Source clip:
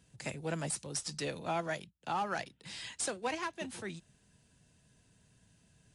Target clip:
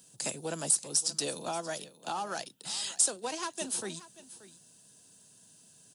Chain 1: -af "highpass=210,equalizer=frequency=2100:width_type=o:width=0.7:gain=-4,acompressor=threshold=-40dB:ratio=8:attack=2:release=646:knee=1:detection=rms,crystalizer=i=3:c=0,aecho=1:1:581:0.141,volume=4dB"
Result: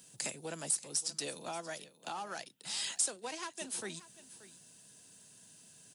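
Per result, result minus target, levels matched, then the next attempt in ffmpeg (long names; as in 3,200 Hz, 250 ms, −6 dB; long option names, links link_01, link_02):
downward compressor: peak gain reduction +6.5 dB; 2,000 Hz band +3.5 dB
-af "highpass=210,equalizer=frequency=2100:width_type=o:width=0.7:gain=-4,acompressor=threshold=-33dB:ratio=8:attack=2:release=646:knee=1:detection=rms,crystalizer=i=3:c=0,aecho=1:1:581:0.141,volume=4dB"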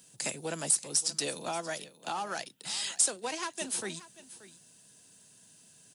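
2,000 Hz band +3.0 dB
-af "highpass=210,equalizer=frequency=2100:width_type=o:width=0.7:gain=-11,acompressor=threshold=-33dB:ratio=8:attack=2:release=646:knee=1:detection=rms,crystalizer=i=3:c=0,aecho=1:1:581:0.141,volume=4dB"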